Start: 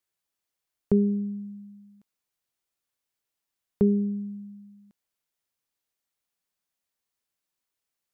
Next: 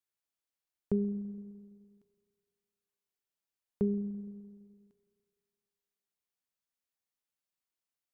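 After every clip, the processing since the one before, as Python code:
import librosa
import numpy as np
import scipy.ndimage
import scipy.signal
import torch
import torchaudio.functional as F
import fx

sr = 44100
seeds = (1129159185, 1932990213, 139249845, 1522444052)

y = fx.rev_spring(x, sr, rt60_s=2.1, pass_ms=(33, 42), chirp_ms=65, drr_db=12.5)
y = y * librosa.db_to_amplitude(-8.5)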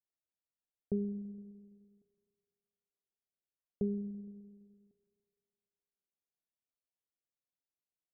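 y = scipy.signal.sosfilt(scipy.signal.butter(12, 770.0, 'lowpass', fs=sr, output='sos'), x)
y = y * librosa.db_to_amplitude(-4.0)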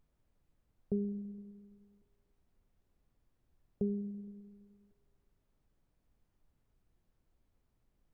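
y = fx.dmg_noise_colour(x, sr, seeds[0], colour='brown', level_db=-73.0)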